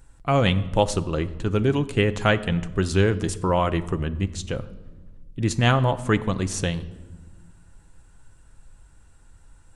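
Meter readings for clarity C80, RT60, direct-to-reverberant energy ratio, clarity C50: 18.0 dB, 1.3 s, 9.5 dB, 16.5 dB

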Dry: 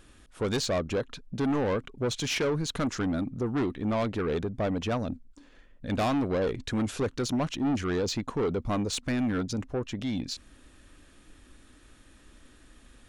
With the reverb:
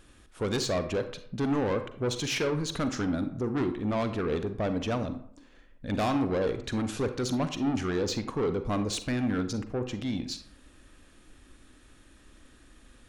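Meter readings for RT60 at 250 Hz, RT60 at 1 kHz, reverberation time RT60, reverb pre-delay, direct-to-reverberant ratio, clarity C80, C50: 0.55 s, 0.60 s, 0.60 s, 39 ms, 9.0 dB, 14.0 dB, 10.5 dB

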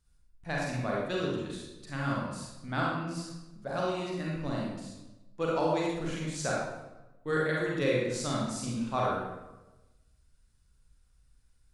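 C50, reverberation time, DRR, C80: −1.0 dB, 1.1 s, −4.5 dB, 2.0 dB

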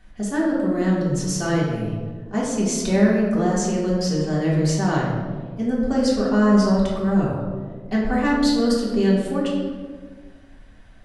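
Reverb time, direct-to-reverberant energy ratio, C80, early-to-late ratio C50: 1.6 s, −6.5 dB, 3.0 dB, 1.0 dB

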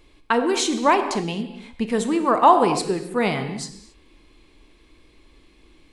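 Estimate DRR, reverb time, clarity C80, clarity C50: 7.5 dB, non-exponential decay, 10.5 dB, 9.0 dB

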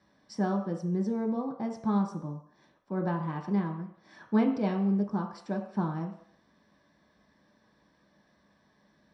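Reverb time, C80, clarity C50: non-exponential decay, 10.5 dB, 8.0 dB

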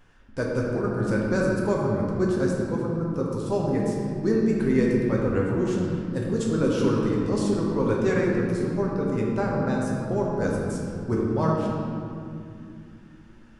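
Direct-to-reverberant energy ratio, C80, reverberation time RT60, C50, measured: −3.5 dB, 1.0 dB, 2.6 s, −0.5 dB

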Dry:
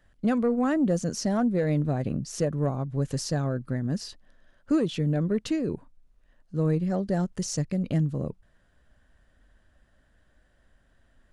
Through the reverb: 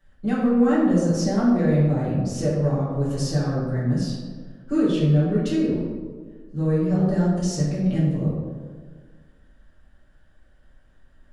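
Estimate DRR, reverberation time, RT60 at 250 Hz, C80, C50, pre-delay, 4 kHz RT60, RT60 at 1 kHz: −9.5 dB, 1.6 s, 1.9 s, 2.5 dB, 0.0 dB, 3 ms, 0.80 s, 1.5 s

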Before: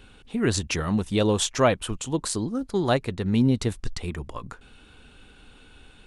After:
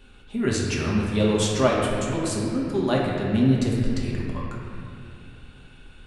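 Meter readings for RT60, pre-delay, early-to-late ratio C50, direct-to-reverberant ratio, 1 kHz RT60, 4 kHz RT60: 2.4 s, 3 ms, −0.5 dB, −4.0 dB, 2.3 s, 2.0 s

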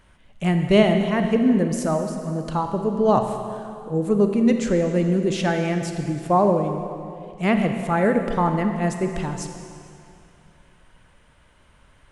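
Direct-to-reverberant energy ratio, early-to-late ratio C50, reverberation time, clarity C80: 5.5 dB, 6.0 dB, 2.5 s, 7.0 dB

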